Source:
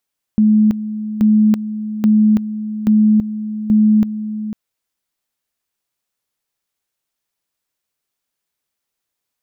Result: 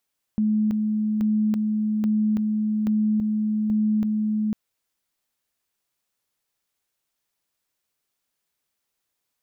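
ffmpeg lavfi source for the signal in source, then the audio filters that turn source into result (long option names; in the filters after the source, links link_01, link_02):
-f lavfi -i "aevalsrc='pow(10,(-8-12.5*gte(mod(t,0.83),0.33))/20)*sin(2*PI*214*t)':duration=4.15:sample_rate=44100"
-af "alimiter=limit=-18dB:level=0:latency=1:release=21"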